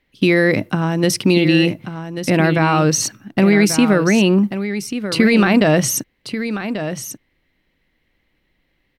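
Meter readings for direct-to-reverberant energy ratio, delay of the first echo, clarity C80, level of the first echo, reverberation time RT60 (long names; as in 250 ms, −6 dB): no reverb audible, 1,138 ms, no reverb audible, −10.0 dB, no reverb audible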